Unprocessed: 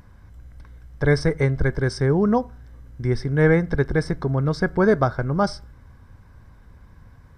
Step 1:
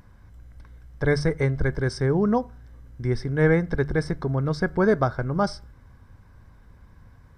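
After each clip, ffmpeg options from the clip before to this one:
ffmpeg -i in.wav -af "bandreject=frequency=73.15:width_type=h:width=4,bandreject=frequency=146.3:width_type=h:width=4,volume=-2.5dB" out.wav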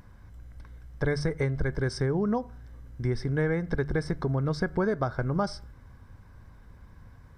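ffmpeg -i in.wav -af "acompressor=threshold=-23dB:ratio=6" out.wav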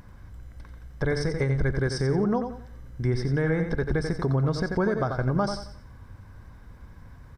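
ffmpeg -i in.wav -af "aecho=1:1:89|178|267|356:0.398|0.123|0.0383|0.0119,alimiter=limit=-18.5dB:level=0:latency=1:release=93,volume=3.5dB" out.wav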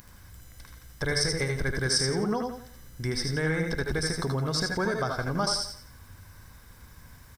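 ffmpeg -i in.wav -af "crystalizer=i=8:c=0,aecho=1:1:77:0.501,volume=-5.5dB" out.wav

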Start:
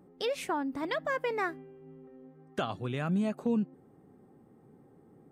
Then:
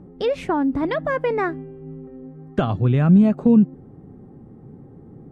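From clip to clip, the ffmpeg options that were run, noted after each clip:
ffmpeg -i in.wav -af "aemphasis=mode=reproduction:type=riaa,volume=8dB" out.wav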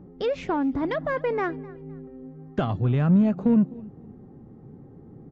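ffmpeg -i in.wav -filter_complex "[0:a]aecho=1:1:256|512:0.0708|0.0205,asplit=2[link_01][link_02];[link_02]asoftclip=type=tanh:threshold=-19dB,volume=-5dB[link_03];[link_01][link_03]amix=inputs=2:normalize=0,aresample=16000,aresample=44100,volume=-7dB" out.wav

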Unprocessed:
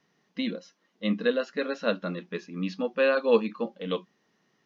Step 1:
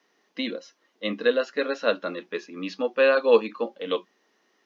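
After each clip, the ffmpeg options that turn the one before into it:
ffmpeg -i in.wav -af "highpass=frequency=280:width=0.5412,highpass=frequency=280:width=1.3066,volume=4dB" out.wav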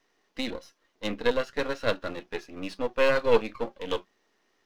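ffmpeg -i in.wav -af "aeval=exprs='if(lt(val(0),0),0.251*val(0),val(0))':channel_layout=same" out.wav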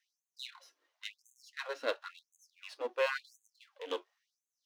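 ffmpeg -i in.wav -af "afftfilt=real='re*gte(b*sr/1024,250*pow(6300/250,0.5+0.5*sin(2*PI*0.95*pts/sr)))':imag='im*gte(b*sr/1024,250*pow(6300/250,0.5+0.5*sin(2*PI*0.95*pts/sr)))':win_size=1024:overlap=0.75,volume=-7dB" out.wav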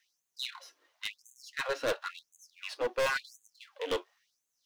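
ffmpeg -i in.wav -af "volume=34dB,asoftclip=hard,volume=-34dB,volume=8dB" out.wav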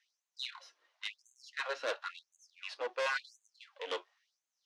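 ffmpeg -i in.wav -af "highpass=550,lowpass=5900,volume=-2.5dB" out.wav

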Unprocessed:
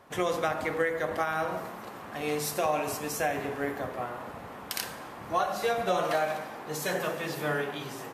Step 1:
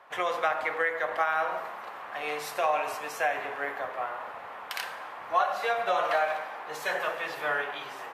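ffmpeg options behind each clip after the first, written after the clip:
ffmpeg -i in.wav -filter_complex "[0:a]acrossover=split=570 3400:gain=0.0794 1 0.2[link_01][link_02][link_03];[link_01][link_02][link_03]amix=inputs=3:normalize=0,volume=4.5dB" out.wav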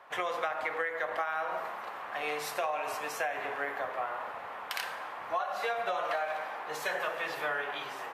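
ffmpeg -i in.wav -af "acompressor=threshold=-29dB:ratio=6" out.wav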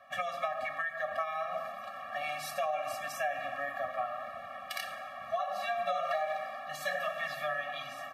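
ffmpeg -i in.wav -af "afftfilt=real='re*eq(mod(floor(b*sr/1024/270),2),0)':imag='im*eq(mod(floor(b*sr/1024/270),2),0)':win_size=1024:overlap=0.75,volume=1.5dB" out.wav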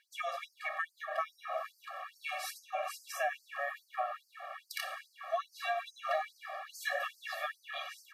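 ffmpeg -i in.wav -af "afftfilt=real='re*gte(b*sr/1024,380*pow(4500/380,0.5+0.5*sin(2*PI*2.4*pts/sr)))':imag='im*gte(b*sr/1024,380*pow(4500/380,0.5+0.5*sin(2*PI*2.4*pts/sr)))':win_size=1024:overlap=0.75" out.wav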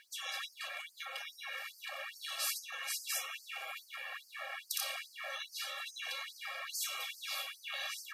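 ffmpeg -i in.wav -af "afftfilt=real='re*lt(hypot(re,im),0.0178)':imag='im*lt(hypot(re,im),0.0178)':win_size=1024:overlap=0.75,volume=10.5dB" out.wav

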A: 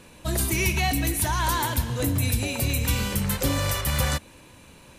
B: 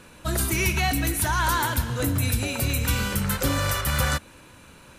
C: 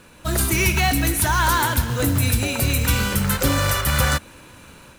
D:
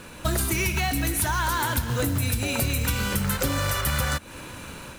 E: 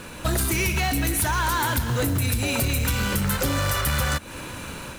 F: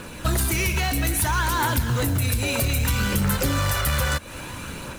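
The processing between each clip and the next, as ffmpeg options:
ffmpeg -i in.wav -af "equalizer=frequency=1400:width=3.5:gain=8.5" out.wav
ffmpeg -i in.wav -af "dynaudnorm=framelen=180:gausssize=3:maxgain=4.5dB,acrusher=bits=4:mode=log:mix=0:aa=0.000001" out.wav
ffmpeg -i in.wav -af "acompressor=threshold=-27dB:ratio=10,volume=5.5dB" out.wav
ffmpeg -i in.wav -af "asoftclip=type=tanh:threshold=-21dB,volume=4dB" out.wav
ffmpeg -i in.wav -af "aphaser=in_gain=1:out_gain=1:delay=2.1:decay=0.25:speed=0.61:type=triangular" out.wav

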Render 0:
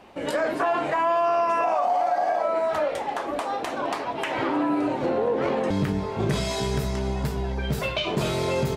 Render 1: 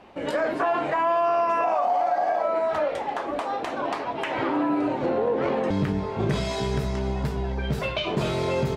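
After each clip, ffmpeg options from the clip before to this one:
ffmpeg -i in.wav -af "highshelf=frequency=7200:gain=-12" out.wav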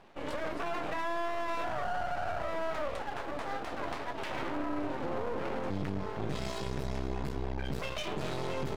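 ffmpeg -i in.wav -af "alimiter=limit=-19.5dB:level=0:latency=1:release=21,aeval=exprs='max(val(0),0)':channel_layout=same,volume=-4dB" out.wav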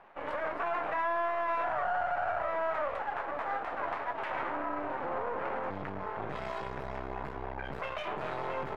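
ffmpeg -i in.wav -filter_complex "[0:a]acrossover=split=590 2200:gain=0.2 1 0.0708[link_01][link_02][link_03];[link_01][link_02][link_03]amix=inputs=3:normalize=0,volume=6dB" out.wav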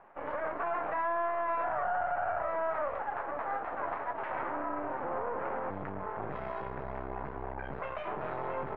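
ffmpeg -i in.wav -af "lowpass=1800" out.wav

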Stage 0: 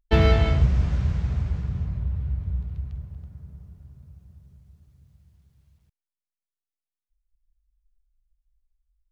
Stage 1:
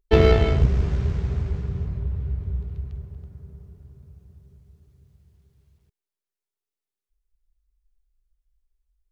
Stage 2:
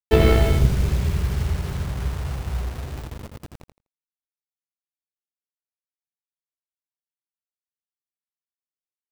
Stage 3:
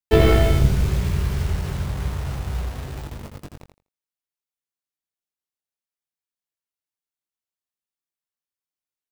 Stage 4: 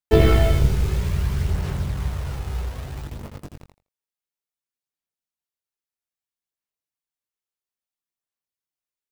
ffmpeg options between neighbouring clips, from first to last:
ffmpeg -i in.wav -af "aeval=exprs='0.473*(cos(1*acos(clip(val(0)/0.473,-1,1)))-cos(1*PI/2))+0.119*(cos(2*acos(clip(val(0)/0.473,-1,1)))-cos(2*PI/2))':channel_layout=same,equalizer=frequency=400:width=4:gain=13" out.wav
ffmpeg -i in.wav -af "acrusher=bits=5:mix=0:aa=0.000001,aecho=1:1:83|166|249:0.531|0.0903|0.0153" out.wav
ffmpeg -i in.wav -filter_complex "[0:a]asplit=2[link_01][link_02];[link_02]adelay=21,volume=-6dB[link_03];[link_01][link_03]amix=inputs=2:normalize=0" out.wav
ffmpeg -i in.wav -af "aphaser=in_gain=1:out_gain=1:delay=2.4:decay=0.27:speed=0.6:type=sinusoidal,volume=-2dB" out.wav

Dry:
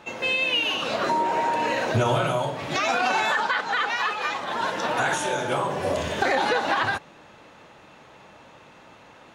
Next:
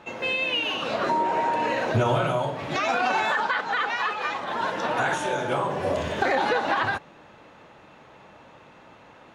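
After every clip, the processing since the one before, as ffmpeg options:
ffmpeg -i in.wav -af "highshelf=frequency=4100:gain=-8.5" out.wav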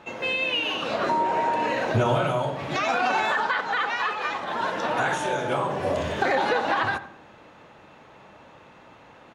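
ffmpeg -i in.wav -filter_complex "[0:a]asplit=2[link_01][link_02];[link_02]adelay=88,lowpass=frequency=2000:poles=1,volume=-12.5dB,asplit=2[link_03][link_04];[link_04]adelay=88,lowpass=frequency=2000:poles=1,volume=0.42,asplit=2[link_05][link_06];[link_06]adelay=88,lowpass=frequency=2000:poles=1,volume=0.42,asplit=2[link_07][link_08];[link_08]adelay=88,lowpass=frequency=2000:poles=1,volume=0.42[link_09];[link_01][link_03][link_05][link_07][link_09]amix=inputs=5:normalize=0" out.wav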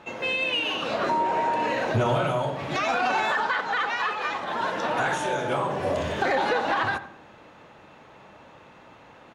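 ffmpeg -i in.wav -af "asoftclip=type=tanh:threshold=-13.5dB" out.wav

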